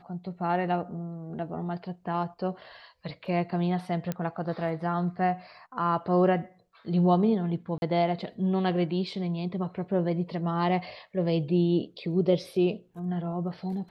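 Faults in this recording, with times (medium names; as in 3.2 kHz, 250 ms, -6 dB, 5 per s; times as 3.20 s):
4.12 s: pop -17 dBFS
7.78–7.82 s: dropout 41 ms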